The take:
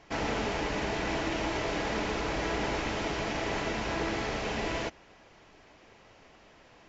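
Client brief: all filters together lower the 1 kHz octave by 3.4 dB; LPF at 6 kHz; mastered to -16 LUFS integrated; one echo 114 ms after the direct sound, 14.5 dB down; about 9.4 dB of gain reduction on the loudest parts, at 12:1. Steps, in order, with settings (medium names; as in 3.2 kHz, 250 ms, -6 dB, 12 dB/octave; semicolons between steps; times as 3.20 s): low-pass 6 kHz; peaking EQ 1 kHz -4.5 dB; compression 12:1, threshold -38 dBFS; delay 114 ms -14.5 dB; trim +26 dB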